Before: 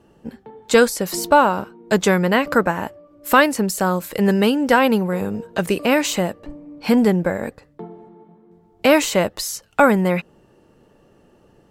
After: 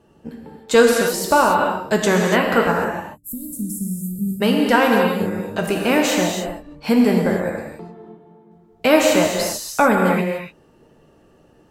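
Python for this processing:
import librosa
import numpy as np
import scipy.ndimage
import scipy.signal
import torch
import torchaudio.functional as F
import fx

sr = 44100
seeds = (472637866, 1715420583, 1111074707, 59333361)

y = fx.ellip_bandstop(x, sr, low_hz=200.0, high_hz=8900.0, order=3, stop_db=70, at=(2.84, 4.4), fade=0.02)
y = fx.doubler(y, sr, ms=13.0, db=-11.5)
y = fx.rev_gated(y, sr, seeds[0], gate_ms=320, shape='flat', drr_db=0.0)
y = F.gain(torch.from_numpy(y), -2.0).numpy()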